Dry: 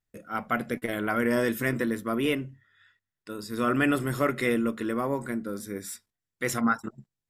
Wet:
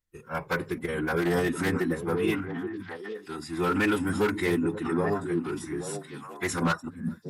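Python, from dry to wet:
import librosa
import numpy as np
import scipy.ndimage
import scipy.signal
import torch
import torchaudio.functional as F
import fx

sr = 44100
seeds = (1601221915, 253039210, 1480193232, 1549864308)

y = 10.0 ** (-17.0 / 20.0) * (np.abs((x / 10.0 ** (-17.0 / 20.0) + 3.0) % 4.0 - 2.0) - 1.0)
y = fx.echo_stepped(y, sr, ms=414, hz=200.0, octaves=1.4, feedback_pct=70, wet_db=-3.0)
y = fx.pitch_keep_formants(y, sr, semitones=-5.5)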